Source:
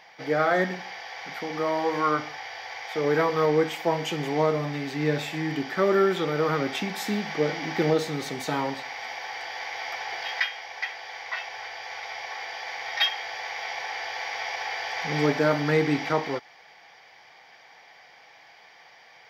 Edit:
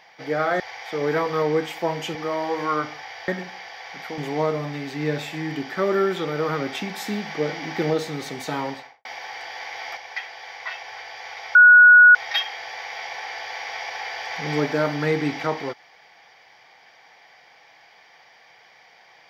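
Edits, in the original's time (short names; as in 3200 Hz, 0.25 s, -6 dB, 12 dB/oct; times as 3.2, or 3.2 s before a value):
0.6–1.5 swap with 2.63–4.18
8.69–9.05 studio fade out
9.97–10.63 cut
12.21–12.81 bleep 1460 Hz -6.5 dBFS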